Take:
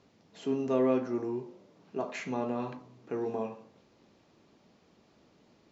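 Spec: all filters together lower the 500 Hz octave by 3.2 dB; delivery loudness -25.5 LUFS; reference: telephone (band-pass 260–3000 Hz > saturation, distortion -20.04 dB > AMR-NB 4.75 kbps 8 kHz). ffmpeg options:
-af "highpass=260,lowpass=3000,equalizer=f=500:t=o:g=-3.5,asoftclip=threshold=0.0794,volume=4.22" -ar 8000 -c:a libopencore_amrnb -b:a 4750

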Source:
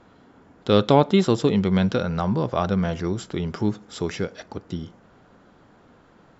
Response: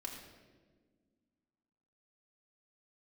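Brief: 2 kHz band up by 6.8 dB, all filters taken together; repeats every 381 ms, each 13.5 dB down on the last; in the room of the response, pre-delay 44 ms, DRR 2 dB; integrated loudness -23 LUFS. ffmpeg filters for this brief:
-filter_complex "[0:a]equalizer=f=2000:t=o:g=9,aecho=1:1:381|762:0.211|0.0444,asplit=2[s0][s1];[1:a]atrim=start_sample=2205,adelay=44[s2];[s1][s2]afir=irnorm=-1:irlink=0,volume=1[s3];[s0][s3]amix=inputs=2:normalize=0,volume=0.668"

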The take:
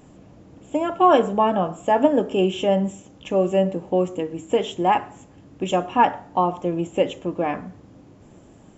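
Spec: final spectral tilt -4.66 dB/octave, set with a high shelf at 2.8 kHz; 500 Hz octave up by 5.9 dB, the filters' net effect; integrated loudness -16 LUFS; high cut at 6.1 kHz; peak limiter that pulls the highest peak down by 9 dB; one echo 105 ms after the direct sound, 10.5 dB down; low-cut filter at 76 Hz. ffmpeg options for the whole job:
-af "highpass=76,lowpass=6100,equalizer=f=500:t=o:g=7,highshelf=f=2800:g=8,alimiter=limit=0.376:level=0:latency=1,aecho=1:1:105:0.299,volume=1.58"

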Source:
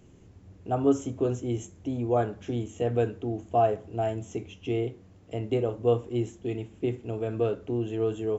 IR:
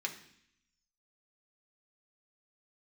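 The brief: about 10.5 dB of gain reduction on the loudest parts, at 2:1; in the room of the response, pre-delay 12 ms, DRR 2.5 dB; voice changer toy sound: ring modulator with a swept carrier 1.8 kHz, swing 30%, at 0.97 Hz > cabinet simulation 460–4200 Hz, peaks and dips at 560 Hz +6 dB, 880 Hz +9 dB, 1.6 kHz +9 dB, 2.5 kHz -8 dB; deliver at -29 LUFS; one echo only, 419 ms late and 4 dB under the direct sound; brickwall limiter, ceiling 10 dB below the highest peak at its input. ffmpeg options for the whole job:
-filter_complex "[0:a]acompressor=threshold=0.0141:ratio=2,alimiter=level_in=2.37:limit=0.0631:level=0:latency=1,volume=0.422,aecho=1:1:419:0.631,asplit=2[s0][s1];[1:a]atrim=start_sample=2205,adelay=12[s2];[s1][s2]afir=irnorm=-1:irlink=0,volume=0.596[s3];[s0][s3]amix=inputs=2:normalize=0,aeval=exprs='val(0)*sin(2*PI*1800*n/s+1800*0.3/0.97*sin(2*PI*0.97*n/s))':c=same,highpass=460,equalizer=f=560:t=q:w=4:g=6,equalizer=f=880:t=q:w=4:g=9,equalizer=f=1600:t=q:w=4:g=9,equalizer=f=2500:t=q:w=4:g=-8,lowpass=f=4200:w=0.5412,lowpass=f=4200:w=1.3066,volume=2.11"

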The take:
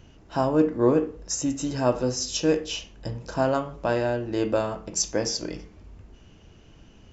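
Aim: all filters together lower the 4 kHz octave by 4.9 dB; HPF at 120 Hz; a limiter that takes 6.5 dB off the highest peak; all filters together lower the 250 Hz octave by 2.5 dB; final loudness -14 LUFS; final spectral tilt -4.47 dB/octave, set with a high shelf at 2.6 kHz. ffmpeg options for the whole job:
-af "highpass=120,equalizer=f=250:t=o:g=-3,highshelf=f=2600:g=-3.5,equalizer=f=4000:t=o:g=-3.5,volume=5.96,alimiter=limit=1:level=0:latency=1"

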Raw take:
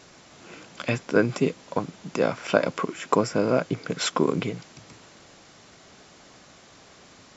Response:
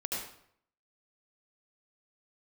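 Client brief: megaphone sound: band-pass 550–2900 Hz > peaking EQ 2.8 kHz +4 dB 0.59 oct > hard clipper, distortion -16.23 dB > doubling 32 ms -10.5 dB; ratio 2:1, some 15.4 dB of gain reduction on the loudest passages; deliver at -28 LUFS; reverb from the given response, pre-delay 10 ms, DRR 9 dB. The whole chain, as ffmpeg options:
-filter_complex "[0:a]acompressor=threshold=0.00631:ratio=2,asplit=2[s0][s1];[1:a]atrim=start_sample=2205,adelay=10[s2];[s1][s2]afir=irnorm=-1:irlink=0,volume=0.237[s3];[s0][s3]amix=inputs=2:normalize=0,highpass=550,lowpass=2900,equalizer=f=2800:t=o:w=0.59:g=4,asoftclip=type=hard:threshold=0.0335,asplit=2[s4][s5];[s5]adelay=32,volume=0.299[s6];[s4][s6]amix=inputs=2:normalize=0,volume=6.68"

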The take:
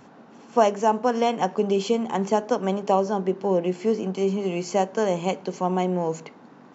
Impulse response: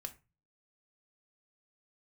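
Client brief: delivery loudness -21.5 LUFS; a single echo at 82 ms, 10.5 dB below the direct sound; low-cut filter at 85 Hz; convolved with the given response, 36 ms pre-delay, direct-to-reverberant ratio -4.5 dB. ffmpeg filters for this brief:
-filter_complex "[0:a]highpass=85,aecho=1:1:82:0.299,asplit=2[s0][s1];[1:a]atrim=start_sample=2205,adelay=36[s2];[s1][s2]afir=irnorm=-1:irlink=0,volume=2.37[s3];[s0][s3]amix=inputs=2:normalize=0,volume=0.708"

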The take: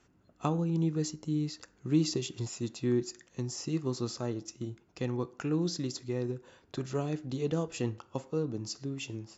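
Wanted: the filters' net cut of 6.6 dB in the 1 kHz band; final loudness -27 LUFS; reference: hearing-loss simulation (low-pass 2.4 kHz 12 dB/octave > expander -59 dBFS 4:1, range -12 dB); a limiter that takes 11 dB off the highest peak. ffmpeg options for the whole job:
-af "equalizer=f=1000:t=o:g=-9,alimiter=level_in=1.5:limit=0.0631:level=0:latency=1,volume=0.668,lowpass=2400,agate=range=0.251:threshold=0.00112:ratio=4,volume=3.98"

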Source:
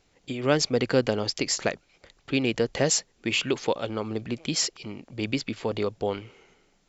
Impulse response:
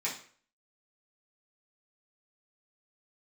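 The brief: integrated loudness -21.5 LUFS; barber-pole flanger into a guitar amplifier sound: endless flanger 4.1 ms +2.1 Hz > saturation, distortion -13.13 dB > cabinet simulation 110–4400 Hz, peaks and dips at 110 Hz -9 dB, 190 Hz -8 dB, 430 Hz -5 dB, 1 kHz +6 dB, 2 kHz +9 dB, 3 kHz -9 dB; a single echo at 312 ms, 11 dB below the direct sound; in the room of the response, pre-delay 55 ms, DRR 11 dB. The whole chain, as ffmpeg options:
-filter_complex "[0:a]aecho=1:1:312:0.282,asplit=2[s0][s1];[1:a]atrim=start_sample=2205,adelay=55[s2];[s1][s2]afir=irnorm=-1:irlink=0,volume=0.15[s3];[s0][s3]amix=inputs=2:normalize=0,asplit=2[s4][s5];[s5]adelay=4.1,afreqshift=2.1[s6];[s4][s6]amix=inputs=2:normalize=1,asoftclip=threshold=0.0794,highpass=110,equalizer=f=110:t=q:w=4:g=-9,equalizer=f=190:t=q:w=4:g=-8,equalizer=f=430:t=q:w=4:g=-5,equalizer=f=1000:t=q:w=4:g=6,equalizer=f=2000:t=q:w=4:g=9,equalizer=f=3000:t=q:w=4:g=-9,lowpass=f=4400:w=0.5412,lowpass=f=4400:w=1.3066,volume=4.47"

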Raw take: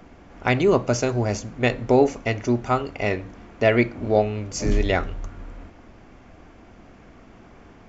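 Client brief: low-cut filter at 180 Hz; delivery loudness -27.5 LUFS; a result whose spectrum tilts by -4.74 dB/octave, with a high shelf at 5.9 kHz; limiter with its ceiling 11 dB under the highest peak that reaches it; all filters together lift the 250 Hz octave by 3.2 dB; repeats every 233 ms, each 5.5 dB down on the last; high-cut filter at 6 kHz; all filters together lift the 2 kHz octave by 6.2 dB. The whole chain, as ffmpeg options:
-af "highpass=180,lowpass=6000,equalizer=f=250:t=o:g=5,equalizer=f=2000:t=o:g=8,highshelf=f=5900:g=-8,alimiter=limit=0.251:level=0:latency=1,aecho=1:1:233|466|699|932|1165|1398|1631:0.531|0.281|0.149|0.079|0.0419|0.0222|0.0118,volume=0.668"

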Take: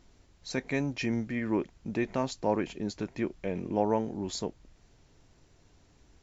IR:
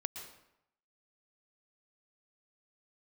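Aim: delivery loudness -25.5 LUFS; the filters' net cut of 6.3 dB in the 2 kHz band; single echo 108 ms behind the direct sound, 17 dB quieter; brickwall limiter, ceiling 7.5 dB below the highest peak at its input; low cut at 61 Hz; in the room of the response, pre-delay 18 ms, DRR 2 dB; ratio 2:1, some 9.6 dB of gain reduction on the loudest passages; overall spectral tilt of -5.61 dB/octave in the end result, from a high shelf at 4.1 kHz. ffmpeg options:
-filter_complex "[0:a]highpass=61,equalizer=f=2000:t=o:g=-6,highshelf=f=4100:g=-6.5,acompressor=threshold=0.01:ratio=2,alimiter=level_in=2.24:limit=0.0631:level=0:latency=1,volume=0.447,aecho=1:1:108:0.141,asplit=2[s0][s1];[1:a]atrim=start_sample=2205,adelay=18[s2];[s1][s2]afir=irnorm=-1:irlink=0,volume=0.794[s3];[s0][s3]amix=inputs=2:normalize=0,volume=5.62"

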